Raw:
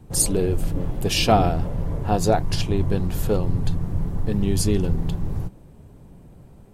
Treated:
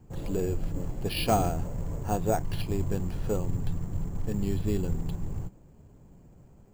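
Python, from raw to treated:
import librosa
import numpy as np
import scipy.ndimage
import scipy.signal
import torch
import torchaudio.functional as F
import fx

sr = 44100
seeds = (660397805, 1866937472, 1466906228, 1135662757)

y = fx.quant_float(x, sr, bits=4)
y = np.repeat(scipy.signal.resample_poly(y, 1, 6), 6)[:len(y)]
y = y * librosa.db_to_amplitude(-7.5)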